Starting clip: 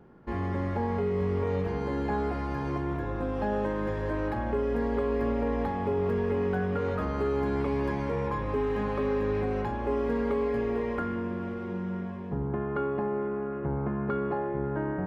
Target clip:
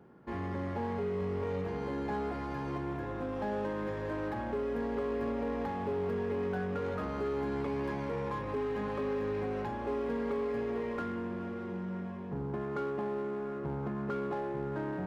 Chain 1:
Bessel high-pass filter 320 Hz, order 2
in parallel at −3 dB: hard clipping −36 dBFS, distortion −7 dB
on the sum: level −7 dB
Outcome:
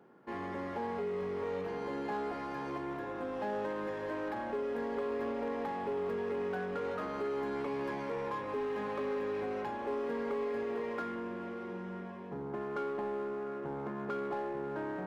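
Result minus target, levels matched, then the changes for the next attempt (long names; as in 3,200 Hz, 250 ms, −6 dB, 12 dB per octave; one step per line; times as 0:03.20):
125 Hz band −8.0 dB
change: Bessel high-pass filter 97 Hz, order 2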